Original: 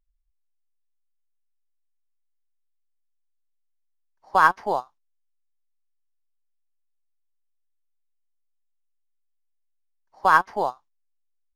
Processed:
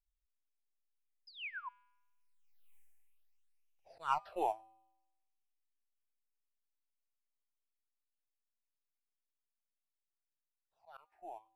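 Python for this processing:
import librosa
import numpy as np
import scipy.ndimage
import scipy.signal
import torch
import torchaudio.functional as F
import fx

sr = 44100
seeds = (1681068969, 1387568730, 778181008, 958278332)

y = fx.doppler_pass(x, sr, speed_mps=56, closest_m=6.4, pass_at_s=2.75)
y = fx.high_shelf(y, sr, hz=5200.0, db=7.0)
y = fx.auto_swell(y, sr, attack_ms=453.0)
y = fx.graphic_eq_15(y, sr, hz=(250, 630, 2500), db=(-12, 6, 10))
y = fx.spec_paint(y, sr, seeds[0], shape='fall', start_s=1.27, length_s=0.42, low_hz=940.0, high_hz=5200.0, level_db=-56.0)
y = fx.phaser_stages(y, sr, stages=8, low_hz=150.0, high_hz=1400.0, hz=0.6, feedback_pct=30)
y = fx.comb_fb(y, sr, f0_hz=110.0, decay_s=0.99, harmonics='odd', damping=0.0, mix_pct=40)
y = y * 10.0 ** (18.0 / 20.0)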